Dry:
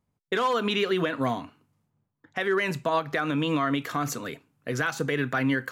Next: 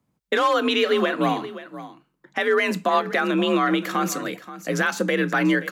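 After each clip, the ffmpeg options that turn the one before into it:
-af "afreqshift=44,aecho=1:1:528:0.178,volume=5dB"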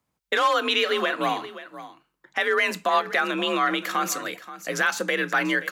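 -af "equalizer=f=180:w=0.46:g=-12,volume=1.5dB"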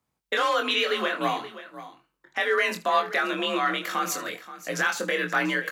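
-af "aecho=1:1:23|77:0.596|0.133,volume=-3dB"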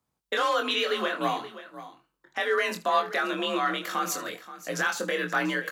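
-af "equalizer=f=2.2k:t=o:w=0.65:g=-4,volume=-1dB"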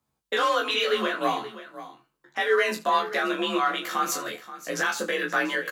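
-filter_complex "[0:a]asplit=2[a][b];[b]adelay=14,volume=-2.5dB[c];[a][c]amix=inputs=2:normalize=0"

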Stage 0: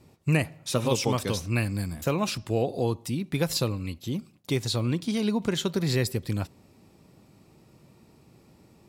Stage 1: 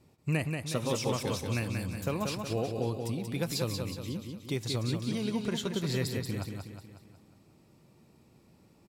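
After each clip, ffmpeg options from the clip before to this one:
-af "aecho=1:1:183|366|549|732|915|1098:0.562|0.281|0.141|0.0703|0.0351|0.0176,volume=-6.5dB"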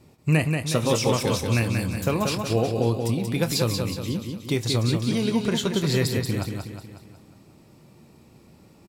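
-filter_complex "[0:a]asplit=2[a][b];[b]adelay=26,volume=-12.5dB[c];[a][c]amix=inputs=2:normalize=0,volume=8.5dB"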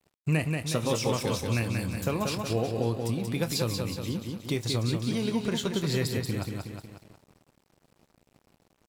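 -filter_complex "[0:a]asplit=2[a][b];[b]acompressor=threshold=-30dB:ratio=6,volume=1.5dB[c];[a][c]amix=inputs=2:normalize=0,aeval=exprs='sgn(val(0))*max(abs(val(0))-0.00794,0)':c=same,volume=-7.5dB"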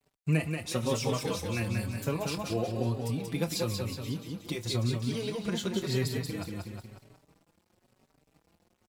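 -filter_complex "[0:a]asplit=2[a][b];[b]adelay=4.8,afreqshift=0.99[c];[a][c]amix=inputs=2:normalize=1"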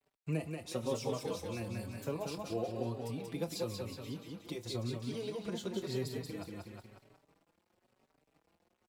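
-filter_complex "[0:a]bass=f=250:g=-7,treble=f=4k:g=-6,acrossover=split=310|1000|3500[a][b][c][d];[c]acompressor=threshold=-53dB:ratio=6[e];[a][b][e][d]amix=inputs=4:normalize=0,volume=-3.5dB"

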